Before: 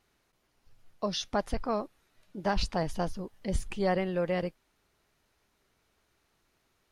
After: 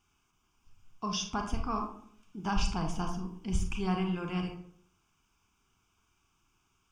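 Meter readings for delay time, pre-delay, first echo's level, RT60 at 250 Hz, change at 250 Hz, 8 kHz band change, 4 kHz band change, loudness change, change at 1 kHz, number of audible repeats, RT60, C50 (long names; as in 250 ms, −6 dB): no echo audible, 30 ms, no echo audible, 0.70 s, +0.5 dB, +2.5 dB, −1.0 dB, −2.0 dB, −1.0 dB, no echo audible, 0.60 s, 7.0 dB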